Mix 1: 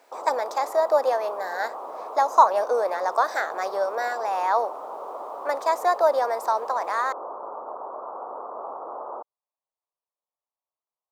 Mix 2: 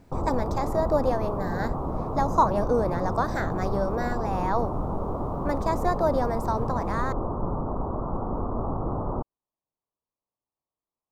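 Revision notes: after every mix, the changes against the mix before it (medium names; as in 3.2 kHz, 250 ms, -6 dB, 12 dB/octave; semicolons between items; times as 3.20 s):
speech -5.5 dB; master: remove high-pass 520 Hz 24 dB/octave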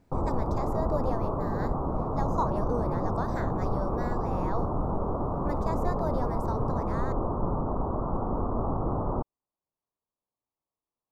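speech -9.0 dB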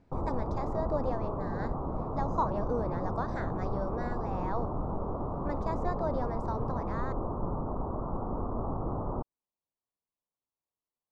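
background -4.5 dB; master: add distance through air 110 m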